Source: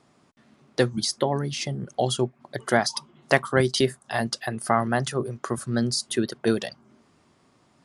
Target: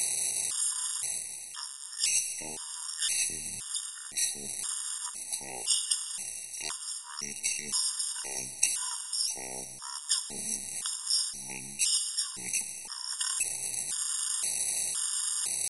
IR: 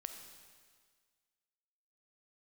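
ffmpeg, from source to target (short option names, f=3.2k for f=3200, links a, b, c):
-filter_complex "[0:a]aeval=exprs='val(0)+0.5*0.0355*sgn(val(0))':c=same,aeval=exprs='0.794*(cos(1*acos(clip(val(0)/0.794,-1,1)))-cos(1*PI/2))+0.0158*(cos(2*acos(clip(val(0)/0.794,-1,1)))-cos(2*PI/2))+0.0447*(cos(4*acos(clip(val(0)/0.794,-1,1)))-cos(4*PI/2))+0.355*(cos(6*acos(clip(val(0)/0.794,-1,1)))-cos(6*PI/2))+0.0158*(cos(8*acos(clip(val(0)/0.794,-1,1)))-cos(8*PI/2))':c=same,equalizer=f=125:t=o:w=1:g=-11,equalizer=f=250:t=o:w=1:g=-9,equalizer=f=500:t=o:w=1:g=-11,equalizer=f=1k:t=o:w=1:g=-11,equalizer=f=4k:t=o:w=1:g=-4,equalizer=f=8k:t=o:w=1:g=-4,areverse,acompressor=threshold=-30dB:ratio=12,areverse,aemphasis=mode=production:type=riaa,acrossover=split=160|1500|4200[a][b][c][d];[a]acompressor=threshold=-56dB:ratio=4[e];[c]acompressor=threshold=-49dB:ratio=4[f];[d]acompressor=threshold=-22dB:ratio=4[g];[e][b][f][g]amix=inputs=4:normalize=0,asetrate=49501,aresample=44100,atempo=0.890899,asplit=2[h][i];[1:a]atrim=start_sample=2205,afade=t=out:st=0.42:d=0.01,atrim=end_sample=18963,highshelf=f=3.1k:g=8.5[j];[i][j]afir=irnorm=-1:irlink=0,volume=0.5dB[k];[h][k]amix=inputs=2:normalize=0,asetrate=22050,aresample=44100,afftfilt=real='re*gt(sin(2*PI*0.97*pts/sr)*(1-2*mod(floor(b*sr/1024/940),2)),0)':imag='im*gt(sin(2*PI*0.97*pts/sr)*(1-2*mod(floor(b*sr/1024/940),2)),0)':win_size=1024:overlap=0.75,volume=-7dB"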